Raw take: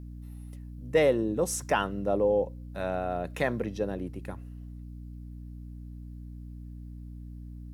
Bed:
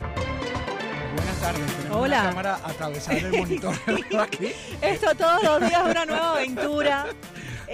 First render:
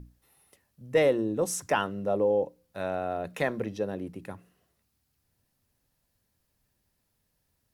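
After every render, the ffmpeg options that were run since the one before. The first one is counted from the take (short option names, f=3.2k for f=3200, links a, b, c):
-af "bandreject=f=60:t=h:w=6,bandreject=f=120:t=h:w=6,bandreject=f=180:t=h:w=6,bandreject=f=240:t=h:w=6,bandreject=f=300:t=h:w=6"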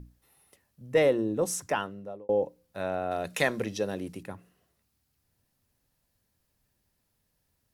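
-filter_complex "[0:a]asettb=1/sr,asplit=3[a][b][c];[a]atrim=end=3.114[d];[b]atrim=start=3.11:end=4.23,asetpts=PTS-STARTPTS,afade=t=in:d=0.004:c=qsin,afade=t=out:st=1.116:d=0.004:c=qsin,equalizer=f=7.4k:w=0.31:g=12[e];[c]atrim=start=4.226[f];[d][e]acrossfade=d=0.004:c1=hsin:c2=qsin[g];[g][f]acrossfade=d=0.004:c1=qsin:c2=hsin,asplit=2[h][i];[h]atrim=end=2.29,asetpts=PTS-STARTPTS,afade=t=out:st=1.53:d=0.76[j];[i]atrim=start=2.29,asetpts=PTS-STARTPTS,afade=t=in:d=0.004:c=hsin[k];[j][k]concat=n=2:v=0:a=1"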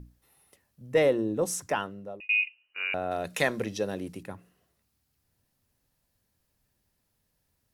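-filter_complex "[0:a]asettb=1/sr,asplit=3[a][b][c];[a]atrim=end=2.204[d];[b]atrim=start=2.2:end=2.94,asetpts=PTS-STARTPTS,afade=t=in:d=0.004:c=qsin,afade=t=out:st=0.736:d=0.004:c=qsin,lowpass=f=2.6k:t=q:w=0.5098,lowpass=f=2.6k:t=q:w=0.6013,lowpass=f=2.6k:t=q:w=0.9,lowpass=f=2.6k:t=q:w=2.563,afreqshift=-3000[e];[c]atrim=start=2.936[f];[d][e]acrossfade=d=0.004:c1=hsin:c2=qsin[g];[g][f]acrossfade=d=0.004:c1=qsin:c2=hsin"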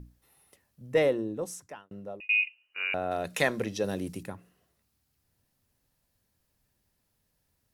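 -filter_complex "[0:a]asettb=1/sr,asplit=3[a][b][c];[a]atrim=end=3.844[d];[b]atrim=start=3.84:end=4.3,asetpts=PTS-STARTPTS,afade=t=in:d=0.004:c=qsin,afade=t=out:st=0.456:d=0.004:c=qsin,bass=f=250:g=4,treble=f=4k:g=6[e];[c]atrim=start=4.296[f];[d][e]acrossfade=d=0.004:c1=hsin:c2=qsin[g];[g][f]acrossfade=d=0.004:c1=qsin:c2=hsin,asplit=2[h][i];[h]atrim=end=1.91,asetpts=PTS-STARTPTS,afade=t=out:st=0.85:d=1.06[j];[i]atrim=start=1.91,asetpts=PTS-STARTPTS,afade=t=in:d=0.004:c=hsin[k];[j][k]concat=n=2:v=0:a=1"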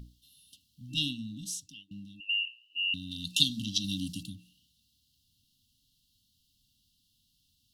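-af "afftfilt=real='re*(1-between(b*sr/4096,310,2700))':imag='im*(1-between(b*sr/4096,310,2700))':win_size=4096:overlap=0.75,equalizer=f=3.7k:t=o:w=1.4:g=14.5"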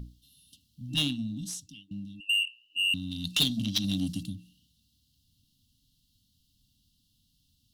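-filter_complex "[0:a]asplit=2[a][b];[b]adynamicsmooth=sensitivity=6.5:basefreq=1.1k,volume=0.5dB[c];[a][c]amix=inputs=2:normalize=0,asoftclip=type=tanh:threshold=-18dB"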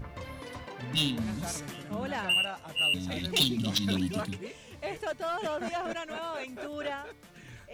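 -filter_complex "[1:a]volume=-13.5dB[a];[0:a][a]amix=inputs=2:normalize=0"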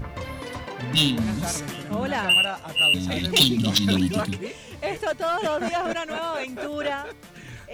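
-af "volume=8dB"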